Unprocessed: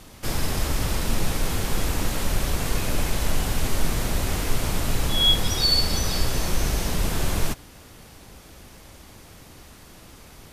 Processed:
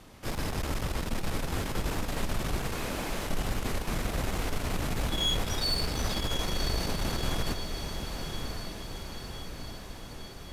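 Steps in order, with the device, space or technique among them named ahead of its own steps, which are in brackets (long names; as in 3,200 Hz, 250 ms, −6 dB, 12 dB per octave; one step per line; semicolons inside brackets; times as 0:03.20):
0:02.72–0:03.27: high-pass filter 210 Hz
tube preamp driven hard (tube saturation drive 19 dB, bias 0.55; low-shelf EQ 140 Hz −3 dB; high-shelf EQ 4,100 Hz −8 dB)
feedback delay with all-pass diffusion 1,073 ms, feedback 61%, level −6 dB
level −1.5 dB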